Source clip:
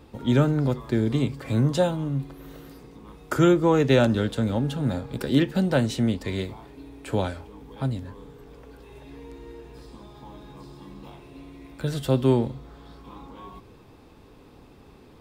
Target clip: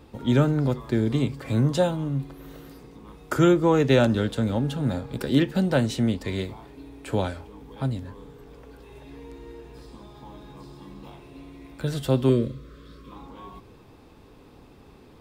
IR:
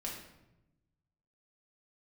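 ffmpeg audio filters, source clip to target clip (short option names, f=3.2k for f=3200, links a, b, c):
-filter_complex "[0:a]asettb=1/sr,asplit=3[a][b][c];[a]atrim=end=12.294[d];[b]atrim=start=12.29:end=13.12,asetpts=PTS-STARTPTS,afade=t=in:d=0.004:c=qsin,afade=t=out:st=0.826:d=0.004:c=qsin,asuperstop=centerf=810:order=8:qfactor=1.9[e];[c]atrim=start=13.116[f];[d][e]acrossfade=d=0.004:c1=hsin:c2=qsin[g];[g][f]acrossfade=d=0.004:c1=qsin:c2=hsin"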